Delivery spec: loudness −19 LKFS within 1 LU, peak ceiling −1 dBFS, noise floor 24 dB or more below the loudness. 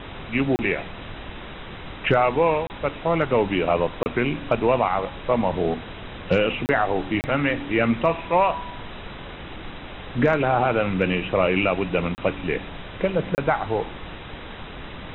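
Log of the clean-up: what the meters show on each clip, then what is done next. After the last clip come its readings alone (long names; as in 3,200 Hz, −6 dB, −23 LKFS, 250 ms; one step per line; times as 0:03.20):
number of dropouts 7; longest dropout 29 ms; background noise floor −38 dBFS; target noise floor −47 dBFS; integrated loudness −23.0 LKFS; sample peak −7.0 dBFS; target loudness −19.0 LKFS
→ repair the gap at 0:00.56/0:02.67/0:04.03/0:06.66/0:07.21/0:12.15/0:13.35, 29 ms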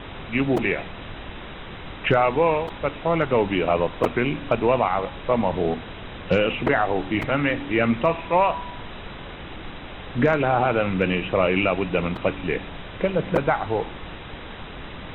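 number of dropouts 0; background noise floor −38 dBFS; target noise floor −47 dBFS
→ noise reduction from a noise print 9 dB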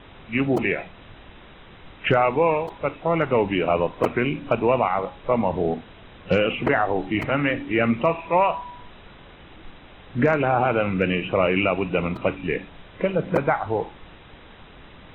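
background noise floor −47 dBFS; integrated loudness −23.0 LKFS; sample peak −7.0 dBFS; target loudness −19.0 LKFS
→ level +4 dB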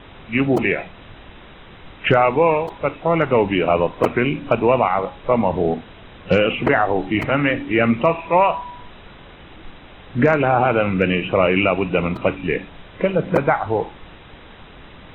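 integrated loudness −19.0 LKFS; sample peak −3.0 dBFS; background noise floor −43 dBFS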